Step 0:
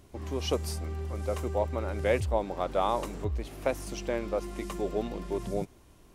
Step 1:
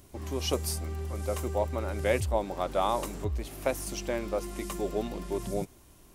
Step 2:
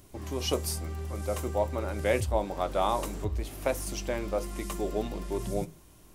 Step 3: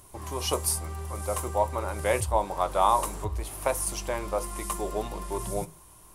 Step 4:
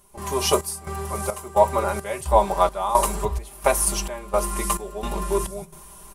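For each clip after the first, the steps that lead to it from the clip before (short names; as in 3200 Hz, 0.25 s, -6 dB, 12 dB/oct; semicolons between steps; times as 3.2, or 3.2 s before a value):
high shelf 7100 Hz +11 dB; notch 470 Hz, Q 15
reverb RT60 0.25 s, pre-delay 6 ms, DRR 12 dB
fifteen-band EQ 250 Hz -7 dB, 1000 Hz +10 dB, 10000 Hz +11 dB
comb 5 ms, depth 86%; step gate "..xxxxx." 173 bpm -12 dB; gain +6 dB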